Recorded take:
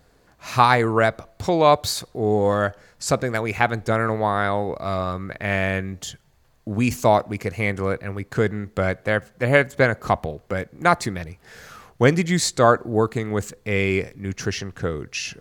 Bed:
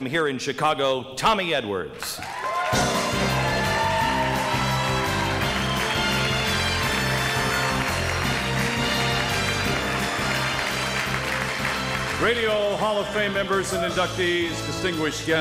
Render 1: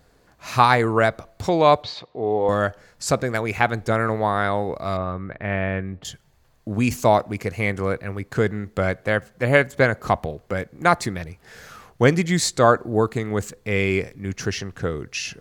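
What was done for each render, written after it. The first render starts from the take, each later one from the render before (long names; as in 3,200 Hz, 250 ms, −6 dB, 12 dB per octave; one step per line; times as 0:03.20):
0:01.83–0:02.49: loudspeaker in its box 170–3,800 Hz, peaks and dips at 200 Hz −8 dB, 340 Hz −4 dB, 920 Hz +3 dB, 1,500 Hz −10 dB
0:04.97–0:06.05: high-frequency loss of the air 430 metres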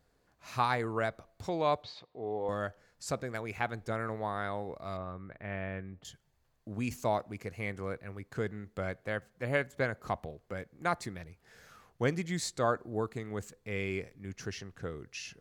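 level −14 dB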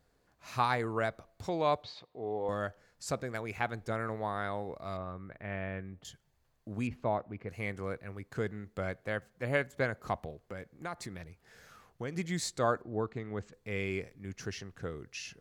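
0:06.87–0:07.49: high-frequency loss of the air 430 metres
0:10.42–0:12.16: downward compressor 2.5 to 1, threshold −38 dBFS
0:12.82–0:13.53: high-frequency loss of the air 160 metres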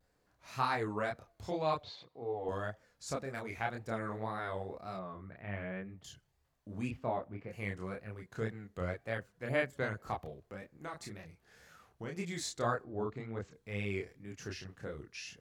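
multi-voice chorus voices 2, 1.3 Hz, delay 29 ms, depth 3 ms
pitch vibrato 1.9 Hz 97 cents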